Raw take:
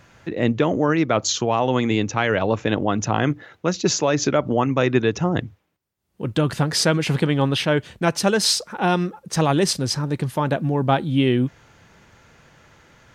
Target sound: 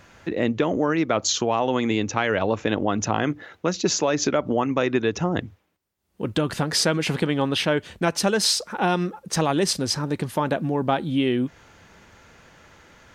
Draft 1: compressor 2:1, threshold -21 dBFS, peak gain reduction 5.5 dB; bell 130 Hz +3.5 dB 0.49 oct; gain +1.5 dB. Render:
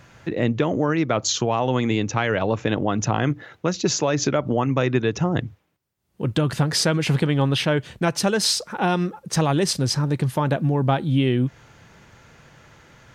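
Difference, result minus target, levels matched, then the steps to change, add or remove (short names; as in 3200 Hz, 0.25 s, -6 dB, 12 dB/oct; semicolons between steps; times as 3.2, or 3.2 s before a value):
125 Hz band +5.5 dB
change: bell 130 Hz -7.5 dB 0.49 oct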